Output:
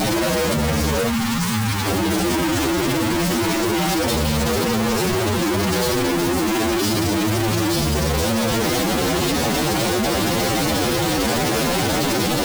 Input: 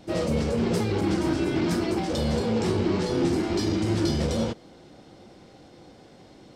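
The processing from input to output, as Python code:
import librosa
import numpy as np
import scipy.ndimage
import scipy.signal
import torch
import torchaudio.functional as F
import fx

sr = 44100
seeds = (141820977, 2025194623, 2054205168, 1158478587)

y = np.sign(x) * np.sqrt(np.mean(np.square(x)))
y = fx.spec_box(y, sr, start_s=0.58, length_s=0.4, low_hz=320.0, high_hz=770.0, gain_db=-16)
y = fx.stretch_vocoder(y, sr, factor=1.9)
y = y * 10.0 ** (7.5 / 20.0)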